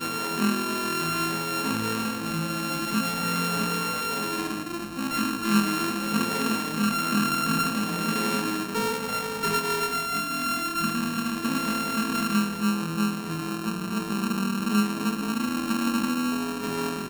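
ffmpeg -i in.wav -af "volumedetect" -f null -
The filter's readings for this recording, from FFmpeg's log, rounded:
mean_volume: -26.9 dB
max_volume: -11.1 dB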